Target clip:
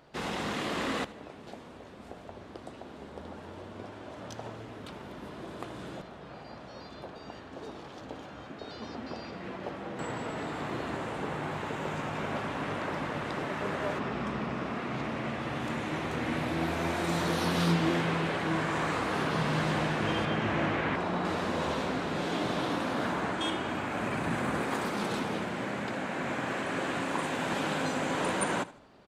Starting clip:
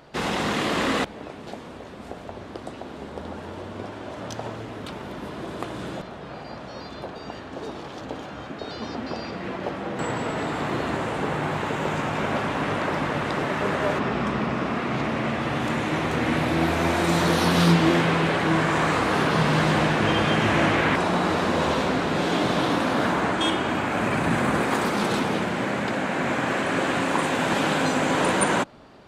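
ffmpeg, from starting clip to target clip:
ffmpeg -i in.wav -filter_complex "[0:a]asettb=1/sr,asplit=3[link_01][link_02][link_03];[link_01]atrim=end=20.254[link_04];[link_02]atrim=start=20.25:end=21.25,asetpts=PTS-STARTPTS,afade=type=in:duration=0.004:curve=qsin,afade=type=out:start_time=0.996:duration=0.004:curve=qsin,aemphasis=mode=reproduction:type=50kf[link_05];[link_03]atrim=start=21.246[link_06];[link_04][link_05]acrossfade=duration=0.004:curve1=hsin:curve2=qsin[link_07];[link_07][link_06]acrossfade=duration=0.004:curve1=qsin:curve2=hsin,aecho=1:1:78|156|234:0.119|0.0428|0.0154,volume=-8.5dB" out.wav

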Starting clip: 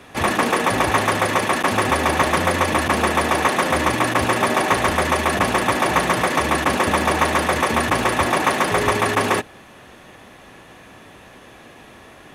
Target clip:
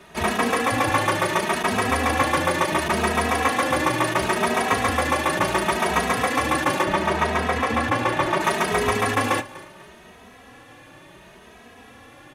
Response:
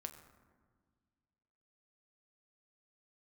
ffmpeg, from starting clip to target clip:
-filter_complex "[0:a]asettb=1/sr,asplit=3[link_01][link_02][link_03];[link_01]atrim=end=6.834[link_04];[link_02]atrim=start=6.83:end=8.41,asetpts=PTS-STARTPTS,afade=type=in:duration=0.004:curve=qsin,afade=type=out:start_time=1.576:duration=0.004:curve=qsin,highshelf=frequency=5900:gain=-11.5[link_05];[link_03]atrim=start=8.406[link_06];[link_04][link_05]acrossfade=duration=0.004:curve1=hsin:curve2=qsin[link_07];[link_07][link_06]acrossfade=duration=0.004:curve1=qsin:curve2=hsin,asplit=2[link_08][link_09];[link_09]aecho=0:1:246|492|738:0.112|0.0471|0.0198[link_10];[link_08][link_10]amix=inputs=2:normalize=0,asplit=2[link_11][link_12];[link_12]adelay=2.8,afreqshift=0.71[link_13];[link_11][link_13]amix=inputs=2:normalize=1"

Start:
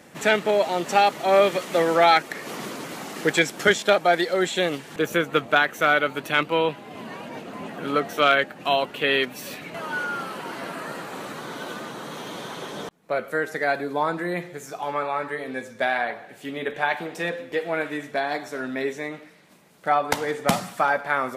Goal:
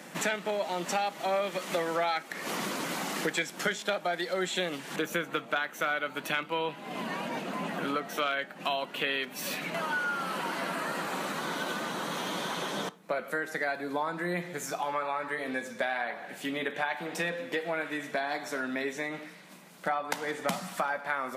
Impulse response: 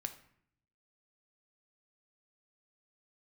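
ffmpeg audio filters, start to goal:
-filter_complex "[0:a]highpass=frequency=160:width=0.5412,highpass=frequency=160:width=1.3066,equalizer=frequency=420:width_type=o:width=0.77:gain=-5.5,acompressor=threshold=-34dB:ratio=4,asplit=2[link_01][link_02];[1:a]atrim=start_sample=2205,asetrate=70560,aresample=44100[link_03];[link_02][link_03]afir=irnorm=-1:irlink=0,volume=2dB[link_04];[link_01][link_04]amix=inputs=2:normalize=0"

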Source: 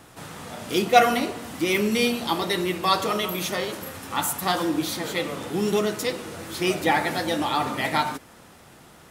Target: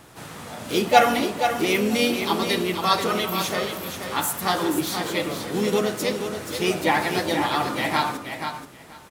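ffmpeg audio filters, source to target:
ffmpeg -i in.wav -filter_complex "[0:a]aecho=1:1:480|960|1440:0.422|0.0675|0.0108,asplit=2[link_01][link_02];[link_02]asetrate=52444,aresample=44100,atempo=0.840896,volume=-8dB[link_03];[link_01][link_03]amix=inputs=2:normalize=0" out.wav

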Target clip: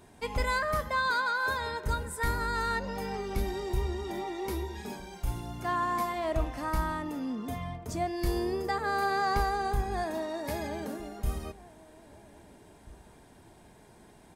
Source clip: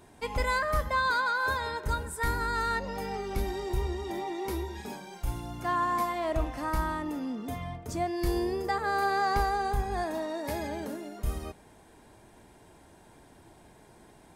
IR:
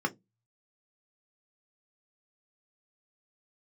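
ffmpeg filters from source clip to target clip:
-filter_complex "[0:a]asettb=1/sr,asplit=3[link_01][link_02][link_03];[link_01]atrim=end=0.744[link_04];[link_02]atrim=start=0.74:end=1.58,asetpts=PTS-STARTPTS,afade=type=in:duration=0.004:curve=qsin,afade=type=out:start_time=0.836:duration=0.004:curve=qsin,highpass=frequency=120:poles=1[link_05];[link_03]atrim=start=1.576[link_06];[link_04][link_05]acrossfade=duration=0.004:curve1=hsin:curve2=qsin[link_07];[link_07][link_06]acrossfade=duration=0.004:curve1=qsin:curve2=hsin,asplit=2[link_08][link_09];[link_09]adelay=1633,volume=-20dB,highshelf=frequency=4000:gain=-36.7[link_10];[link_08][link_10]amix=inputs=2:normalize=0,asplit=2[link_11][link_12];[1:a]atrim=start_sample=2205[link_13];[link_12][link_13]afir=irnorm=-1:irlink=0,volume=-24.5dB[link_14];[link_11][link_14]amix=inputs=2:normalize=0"

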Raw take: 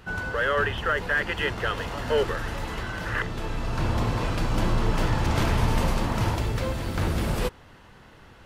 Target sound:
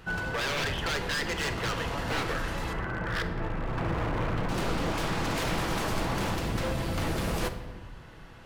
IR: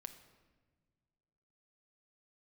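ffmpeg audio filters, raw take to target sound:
-filter_complex "[0:a]asettb=1/sr,asplit=3[link_01][link_02][link_03];[link_01]atrim=end=2.734[link_04];[link_02]atrim=start=2.73:end=4.49,asetpts=PTS-STARTPTS,afade=type=in:duration=0.004:curve=qsin,afade=type=out:start_time=1.756:duration=0.004:curve=qsin,lowpass=frequency=2100:width=0.5412,lowpass=frequency=2100:width=1.3066[link_05];[link_03]atrim=start=4.486[link_06];[link_04][link_05]acrossfade=duration=0.004:curve1=hsin:curve2=qsin[link_07];[link_07][link_06]acrossfade=duration=0.004:curve1=qsin:curve2=hsin,aeval=exprs='0.0596*(abs(mod(val(0)/0.0596+3,4)-2)-1)':channel_layout=same[link_08];[1:a]atrim=start_sample=2205[link_09];[link_08][link_09]afir=irnorm=-1:irlink=0,volume=5dB"

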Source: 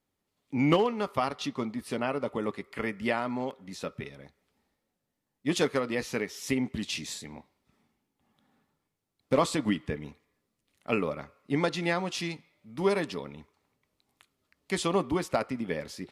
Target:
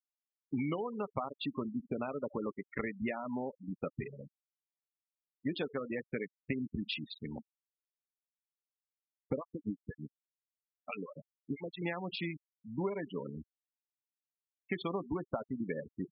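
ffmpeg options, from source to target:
ffmpeg -i in.wav -filter_complex "[0:a]highshelf=frequency=3000:gain=4.5,asplit=2[link_01][link_02];[link_02]adelay=69,lowpass=frequency=2800:poles=1,volume=-21.5dB,asplit=2[link_03][link_04];[link_04]adelay=69,lowpass=frequency=2800:poles=1,volume=0.48,asplit=2[link_05][link_06];[link_06]adelay=69,lowpass=frequency=2800:poles=1,volume=0.48[link_07];[link_01][link_03][link_05][link_07]amix=inputs=4:normalize=0,adynamicsmooth=sensitivity=6.5:basefreq=1400,equalizer=frequency=6200:width_type=o:width=0.31:gain=-15,acompressor=threshold=-36dB:ratio=8,asettb=1/sr,asplit=3[link_08][link_09][link_10];[link_08]atrim=end=9.374[link_11];[link_09]atrim=start=9.37:end=11.82,asetpts=PTS-STARTPTS,afade=type=in:duration=0.004:curve=qsin,afade=type=out:start_time=2.446:duration=0.004:curve=qsin,acrossover=split=680[link_12][link_13];[link_12]aeval=exprs='val(0)*(1-1/2+1/2*cos(2*PI*6.1*n/s))':channel_layout=same[link_14];[link_13]aeval=exprs='val(0)*(1-1/2-1/2*cos(2*PI*6.1*n/s))':channel_layout=same[link_15];[link_14][link_15]amix=inputs=2:normalize=0[link_16];[link_10]atrim=start=11.816[link_17];[link_11][link_16]acrossfade=duration=0.004:curve1=hsin:curve2=qsin[link_18];[link_18][link_17]acrossfade=duration=0.004:curve1=qsin:curve2=hsin,afftfilt=real='re*gte(hypot(re,im),0.0158)':imag='im*gte(hypot(re,im),0.0158)':win_size=1024:overlap=0.75,volume=3.5dB" out.wav

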